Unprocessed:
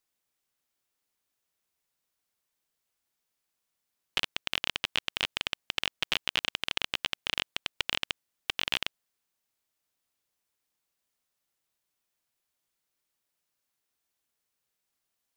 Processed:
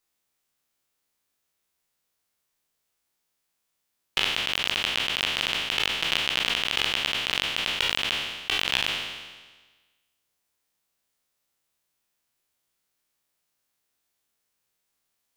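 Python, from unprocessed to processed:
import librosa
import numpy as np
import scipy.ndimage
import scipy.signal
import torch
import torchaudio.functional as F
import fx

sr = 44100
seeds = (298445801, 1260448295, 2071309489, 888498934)

y = fx.spec_trails(x, sr, decay_s=1.35)
y = y * librosa.db_to_amplitude(1.5)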